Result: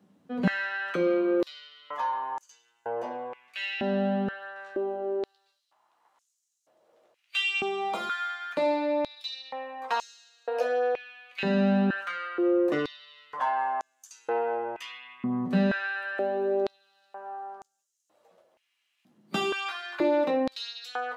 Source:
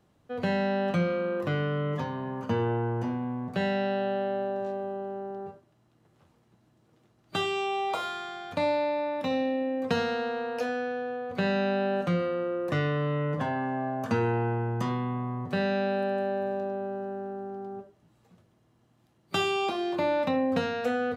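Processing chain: flange 0.22 Hz, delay 10 ms, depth 7.9 ms, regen -32%; in parallel at -9 dB: soft clip -33 dBFS, distortion -10 dB; on the sum: stepped high-pass 2.1 Hz 210–6700 Hz

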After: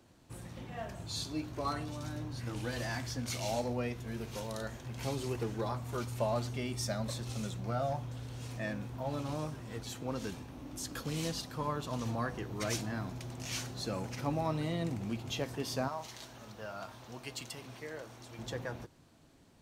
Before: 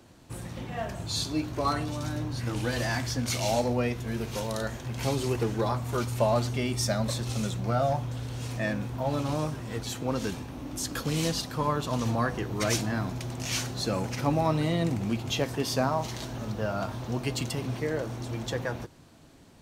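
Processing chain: 15.88–18.39 low shelf 490 Hz -11.5 dB; gain -8 dB

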